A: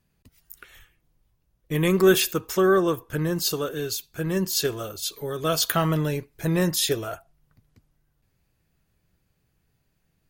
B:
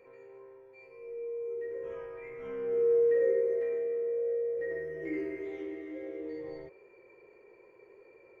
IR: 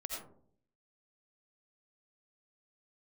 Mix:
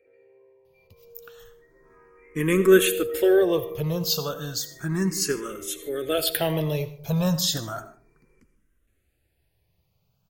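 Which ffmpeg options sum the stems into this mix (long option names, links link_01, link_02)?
-filter_complex "[0:a]adelay=650,volume=0.5dB,asplit=3[link_01][link_02][link_03];[link_02]volume=-9.5dB[link_04];[link_03]volume=-22.5dB[link_05];[1:a]acontrast=79,volume=-11.5dB,asplit=2[link_06][link_07];[link_07]volume=-12dB[link_08];[2:a]atrim=start_sample=2205[link_09];[link_04][link_09]afir=irnorm=-1:irlink=0[link_10];[link_05][link_08]amix=inputs=2:normalize=0,aecho=0:1:152:1[link_11];[link_01][link_06][link_10][link_11]amix=inputs=4:normalize=0,asplit=2[link_12][link_13];[link_13]afreqshift=0.33[link_14];[link_12][link_14]amix=inputs=2:normalize=1"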